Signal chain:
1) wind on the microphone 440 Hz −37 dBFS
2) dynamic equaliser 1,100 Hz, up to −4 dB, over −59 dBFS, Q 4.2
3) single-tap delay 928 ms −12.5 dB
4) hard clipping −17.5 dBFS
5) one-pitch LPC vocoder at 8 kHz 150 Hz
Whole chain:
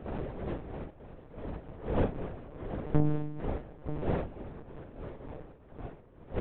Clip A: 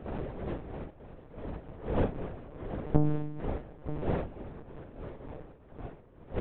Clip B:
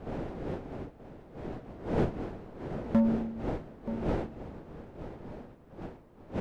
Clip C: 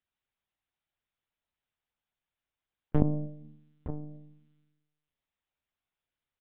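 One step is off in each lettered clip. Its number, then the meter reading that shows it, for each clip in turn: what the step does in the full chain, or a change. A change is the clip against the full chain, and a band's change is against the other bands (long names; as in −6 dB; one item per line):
4, distortion level −22 dB
5, 250 Hz band +4.0 dB
1, 2 kHz band −8.0 dB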